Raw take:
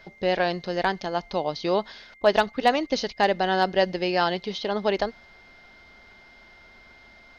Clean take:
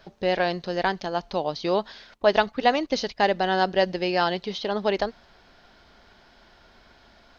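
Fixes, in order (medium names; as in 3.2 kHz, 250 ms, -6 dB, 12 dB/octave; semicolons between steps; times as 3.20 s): clip repair -9 dBFS; band-stop 2.1 kHz, Q 30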